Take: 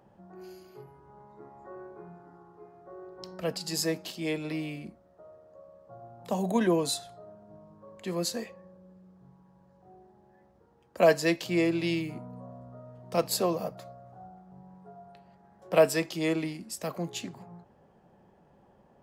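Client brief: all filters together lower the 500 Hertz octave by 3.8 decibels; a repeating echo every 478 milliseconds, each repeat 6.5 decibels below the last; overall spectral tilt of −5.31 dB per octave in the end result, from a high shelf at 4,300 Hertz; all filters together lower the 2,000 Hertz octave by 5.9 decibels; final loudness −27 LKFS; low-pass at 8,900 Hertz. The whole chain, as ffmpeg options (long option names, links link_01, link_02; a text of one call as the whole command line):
ffmpeg -i in.wav -af "lowpass=8900,equalizer=frequency=500:width_type=o:gain=-4.5,equalizer=frequency=2000:width_type=o:gain=-5.5,highshelf=frequency=4300:gain=-7.5,aecho=1:1:478|956|1434|1912|2390|2868:0.473|0.222|0.105|0.0491|0.0231|0.0109,volume=6dB" out.wav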